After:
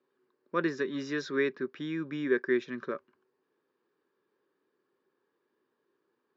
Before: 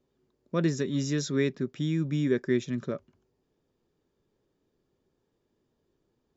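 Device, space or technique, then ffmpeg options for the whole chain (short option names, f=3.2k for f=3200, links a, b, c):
phone earpiece: -af "highpass=360,equalizer=f=380:t=q:w=4:g=3,equalizer=f=670:t=q:w=4:g=-8,equalizer=f=1.1k:t=q:w=4:g=7,equalizer=f=1.6k:t=q:w=4:g=8,equalizer=f=3.4k:t=q:w=4:g=-5,lowpass=f=4.3k:w=0.5412,lowpass=f=4.3k:w=1.3066"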